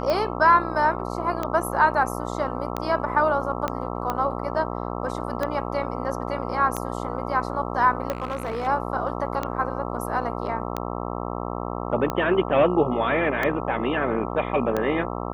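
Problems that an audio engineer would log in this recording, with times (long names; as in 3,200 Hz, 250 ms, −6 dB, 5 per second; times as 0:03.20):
mains buzz 60 Hz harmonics 22 −30 dBFS
scratch tick 45 rpm −12 dBFS
0:03.68: click −12 dBFS
0:08.10–0:08.68: clipping −23 dBFS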